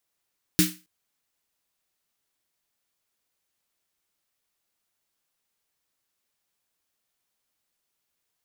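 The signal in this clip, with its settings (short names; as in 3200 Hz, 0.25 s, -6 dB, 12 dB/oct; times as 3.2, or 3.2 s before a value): snare drum length 0.27 s, tones 180 Hz, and 310 Hz, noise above 1500 Hz, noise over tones -1 dB, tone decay 0.27 s, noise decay 0.30 s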